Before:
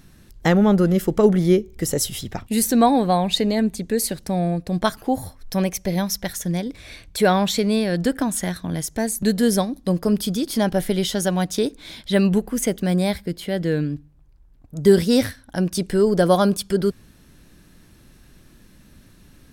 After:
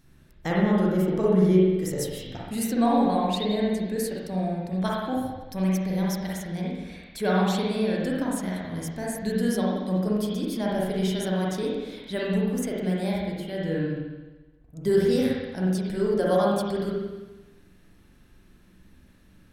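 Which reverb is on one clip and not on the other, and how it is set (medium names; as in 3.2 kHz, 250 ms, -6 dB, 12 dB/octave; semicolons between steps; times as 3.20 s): spring tank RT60 1.2 s, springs 43/59 ms, chirp 55 ms, DRR -5 dB; trim -11.5 dB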